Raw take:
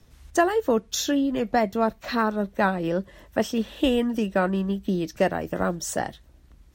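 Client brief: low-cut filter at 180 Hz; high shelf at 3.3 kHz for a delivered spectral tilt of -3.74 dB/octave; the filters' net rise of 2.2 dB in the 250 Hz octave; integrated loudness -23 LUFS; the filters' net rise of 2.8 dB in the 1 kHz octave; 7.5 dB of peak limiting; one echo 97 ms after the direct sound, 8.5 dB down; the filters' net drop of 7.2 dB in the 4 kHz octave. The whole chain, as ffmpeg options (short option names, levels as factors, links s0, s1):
-af "highpass=180,equalizer=f=250:t=o:g=4,equalizer=f=1000:t=o:g=4.5,highshelf=f=3300:g=-4.5,equalizer=f=4000:t=o:g=-7,alimiter=limit=0.224:level=0:latency=1,aecho=1:1:97:0.376,volume=1.19"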